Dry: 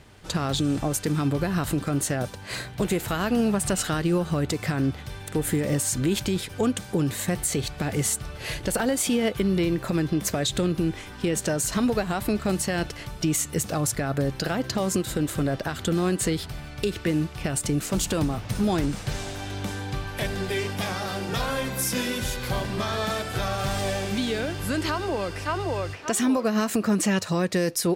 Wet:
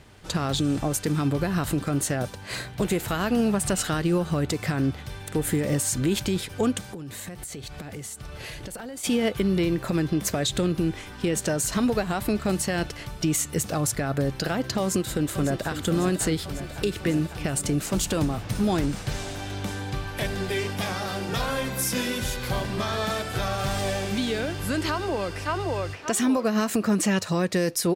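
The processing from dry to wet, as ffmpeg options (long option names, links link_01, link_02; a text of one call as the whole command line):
ffmpeg -i in.wav -filter_complex "[0:a]asplit=3[link_01][link_02][link_03];[link_01]afade=type=out:start_time=6.81:duration=0.02[link_04];[link_02]acompressor=threshold=-33dB:ratio=12:attack=3.2:release=140:knee=1:detection=peak,afade=type=in:start_time=6.81:duration=0.02,afade=type=out:start_time=9.03:duration=0.02[link_05];[link_03]afade=type=in:start_time=9.03:duration=0.02[link_06];[link_04][link_05][link_06]amix=inputs=3:normalize=0,asplit=2[link_07][link_08];[link_08]afade=type=in:start_time=14.8:duration=0.01,afade=type=out:start_time=15.73:duration=0.01,aecho=0:1:550|1100|1650|2200|2750|3300|3850|4400|4950|5500|6050|6600:0.316228|0.237171|0.177878|0.133409|0.100056|0.0750423|0.0562817|0.0422113|0.0316585|0.0237439|0.0178079|0.0133559[link_09];[link_07][link_09]amix=inputs=2:normalize=0" out.wav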